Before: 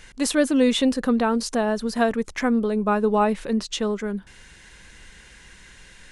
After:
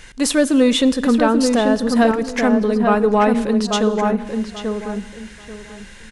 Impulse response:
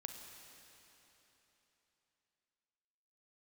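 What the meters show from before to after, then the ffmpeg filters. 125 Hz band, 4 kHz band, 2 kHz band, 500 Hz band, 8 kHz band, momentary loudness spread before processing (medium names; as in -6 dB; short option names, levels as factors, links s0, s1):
no reading, +5.5 dB, +5.5 dB, +6.0 dB, +5.5 dB, 7 LU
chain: -filter_complex "[0:a]acontrast=78,asplit=2[s0][s1];[s1]adelay=837,lowpass=f=1800:p=1,volume=0.631,asplit=2[s2][s3];[s3]adelay=837,lowpass=f=1800:p=1,volume=0.24,asplit=2[s4][s5];[s5]adelay=837,lowpass=f=1800:p=1,volume=0.24[s6];[s0][s2][s4][s6]amix=inputs=4:normalize=0,asplit=2[s7][s8];[1:a]atrim=start_sample=2205,afade=t=out:st=0.4:d=0.01,atrim=end_sample=18081[s9];[s8][s9]afir=irnorm=-1:irlink=0,volume=0.531[s10];[s7][s10]amix=inputs=2:normalize=0,volume=0.631"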